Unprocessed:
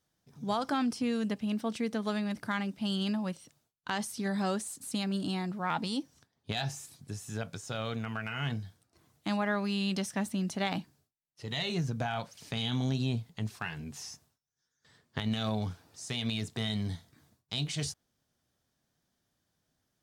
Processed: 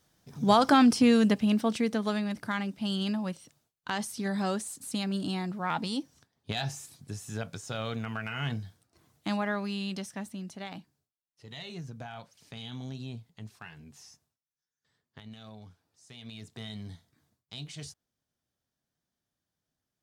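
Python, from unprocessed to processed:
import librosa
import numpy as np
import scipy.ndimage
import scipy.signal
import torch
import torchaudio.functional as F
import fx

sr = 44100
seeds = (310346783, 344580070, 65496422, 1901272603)

y = fx.gain(x, sr, db=fx.line((1.12, 10.0), (2.33, 1.0), (9.3, 1.0), (10.63, -9.0), (14.08, -9.0), (15.45, -16.0), (16.01, -16.0), (16.57, -8.0)))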